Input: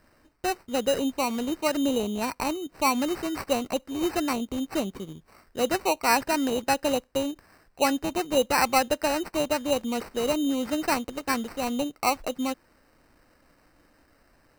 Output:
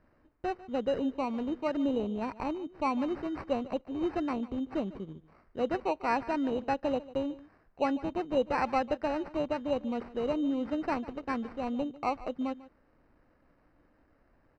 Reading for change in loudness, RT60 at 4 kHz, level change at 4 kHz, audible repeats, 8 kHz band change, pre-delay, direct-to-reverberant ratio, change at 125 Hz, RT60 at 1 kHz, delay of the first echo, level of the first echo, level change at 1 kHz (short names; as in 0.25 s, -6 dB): -6.0 dB, none, -15.5 dB, 1, under -25 dB, none, none, -3.5 dB, none, 0.147 s, -18.0 dB, -6.0 dB